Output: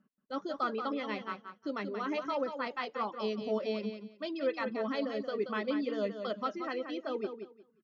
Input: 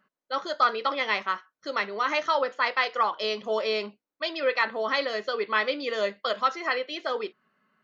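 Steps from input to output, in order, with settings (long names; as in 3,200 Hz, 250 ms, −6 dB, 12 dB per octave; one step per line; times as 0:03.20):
one scale factor per block 7 bits
low-pass filter 5,100 Hz 24 dB per octave
reverb reduction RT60 0.95 s
graphic EQ with 10 bands 125 Hz +4 dB, 250 Hz +10 dB, 500 Hz −4 dB, 1,000 Hz −7 dB, 2,000 Hz −10 dB, 4,000 Hz −10 dB
on a send: repeating echo 179 ms, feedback 20%, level −8 dB
on the sum: level −2 dB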